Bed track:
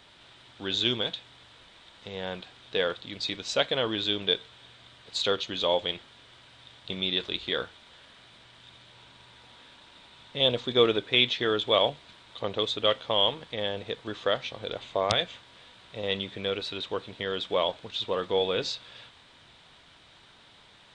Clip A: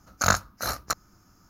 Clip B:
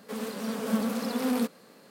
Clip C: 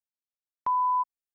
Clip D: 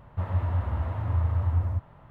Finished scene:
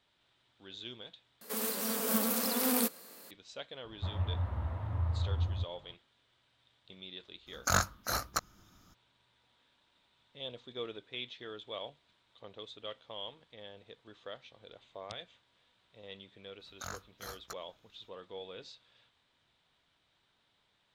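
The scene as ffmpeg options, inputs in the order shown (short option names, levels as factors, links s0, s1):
-filter_complex "[1:a]asplit=2[s0][s1];[0:a]volume=0.112[s2];[2:a]aemphasis=mode=production:type=bsi[s3];[s0]asoftclip=type=tanh:threshold=0.188[s4];[s1]alimiter=limit=0.237:level=0:latency=1:release=87[s5];[s2]asplit=2[s6][s7];[s6]atrim=end=1.414[s8];[s3]atrim=end=1.9,asetpts=PTS-STARTPTS,volume=0.841[s9];[s7]atrim=start=3.306[s10];[4:a]atrim=end=2.1,asetpts=PTS-STARTPTS,volume=0.422,afade=t=in:d=0.004:c=hsin,afade=t=out:st=2.096:d=0.004:c=hsin,adelay=169785S[s11];[s4]atrim=end=1.49,asetpts=PTS-STARTPTS,volume=0.668,afade=t=in:d=0.02,afade=t=out:st=1.47:d=0.02,adelay=328986S[s12];[s5]atrim=end=1.49,asetpts=PTS-STARTPTS,volume=0.15,afade=t=in:d=0.004:c=hsin,afade=t=out:st=1.486:d=0.004:c=hsin,adelay=16600[s13];[s8][s9]acrossfade=d=0.004:c1=hsin:c2=hsin[s14];[s14][s10]acrossfade=d=0.004:c1=hsin:c2=hsin[s15];[s15][s11][s12][s13]amix=inputs=4:normalize=0"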